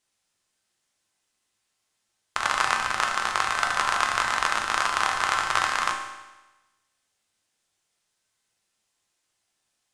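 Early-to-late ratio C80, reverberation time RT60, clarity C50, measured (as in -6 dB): 6.5 dB, 1.1 s, 4.5 dB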